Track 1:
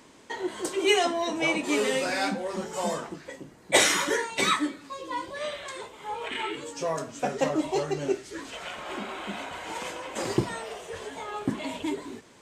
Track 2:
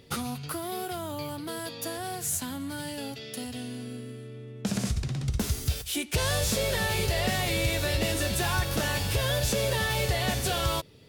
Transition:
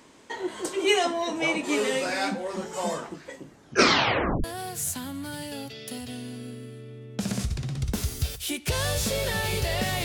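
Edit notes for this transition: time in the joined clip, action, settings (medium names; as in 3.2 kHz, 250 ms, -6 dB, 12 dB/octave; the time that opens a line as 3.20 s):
track 1
3.50 s: tape stop 0.94 s
4.44 s: go over to track 2 from 1.90 s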